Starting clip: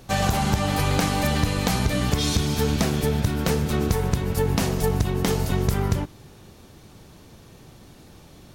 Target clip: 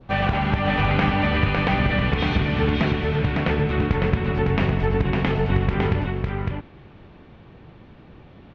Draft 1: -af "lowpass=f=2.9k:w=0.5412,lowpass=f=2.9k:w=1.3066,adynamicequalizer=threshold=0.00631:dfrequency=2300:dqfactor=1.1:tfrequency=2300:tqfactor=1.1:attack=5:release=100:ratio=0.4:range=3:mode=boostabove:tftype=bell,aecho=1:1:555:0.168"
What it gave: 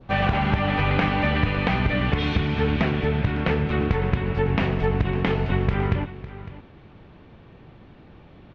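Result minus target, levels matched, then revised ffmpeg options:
echo-to-direct -12 dB
-af "lowpass=f=2.9k:w=0.5412,lowpass=f=2.9k:w=1.3066,adynamicequalizer=threshold=0.00631:dfrequency=2300:dqfactor=1.1:tfrequency=2300:tqfactor=1.1:attack=5:release=100:ratio=0.4:range=3:mode=boostabove:tftype=bell,aecho=1:1:555:0.668"

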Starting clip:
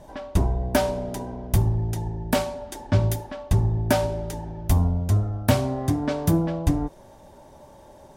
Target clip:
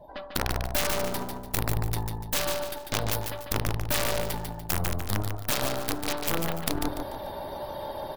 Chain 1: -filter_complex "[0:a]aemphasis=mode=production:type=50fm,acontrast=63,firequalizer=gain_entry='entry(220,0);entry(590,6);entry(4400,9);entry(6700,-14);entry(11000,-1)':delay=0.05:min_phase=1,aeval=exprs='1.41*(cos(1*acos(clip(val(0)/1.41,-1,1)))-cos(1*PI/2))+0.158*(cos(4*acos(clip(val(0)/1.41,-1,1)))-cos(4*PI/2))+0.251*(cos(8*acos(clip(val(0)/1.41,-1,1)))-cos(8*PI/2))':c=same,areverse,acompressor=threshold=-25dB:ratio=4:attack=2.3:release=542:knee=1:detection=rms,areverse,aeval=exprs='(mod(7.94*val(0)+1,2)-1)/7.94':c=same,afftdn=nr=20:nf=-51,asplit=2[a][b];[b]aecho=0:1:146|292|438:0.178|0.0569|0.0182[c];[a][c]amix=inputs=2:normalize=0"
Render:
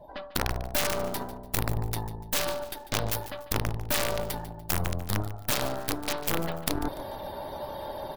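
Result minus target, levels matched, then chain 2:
echo-to-direct -9.5 dB
-filter_complex "[0:a]aemphasis=mode=production:type=50fm,acontrast=63,firequalizer=gain_entry='entry(220,0);entry(590,6);entry(4400,9);entry(6700,-14);entry(11000,-1)':delay=0.05:min_phase=1,aeval=exprs='1.41*(cos(1*acos(clip(val(0)/1.41,-1,1)))-cos(1*PI/2))+0.158*(cos(4*acos(clip(val(0)/1.41,-1,1)))-cos(4*PI/2))+0.251*(cos(8*acos(clip(val(0)/1.41,-1,1)))-cos(8*PI/2))':c=same,areverse,acompressor=threshold=-25dB:ratio=4:attack=2.3:release=542:knee=1:detection=rms,areverse,aeval=exprs='(mod(7.94*val(0)+1,2)-1)/7.94':c=same,afftdn=nr=20:nf=-51,asplit=2[a][b];[b]aecho=0:1:146|292|438|584:0.531|0.17|0.0544|0.0174[c];[a][c]amix=inputs=2:normalize=0"

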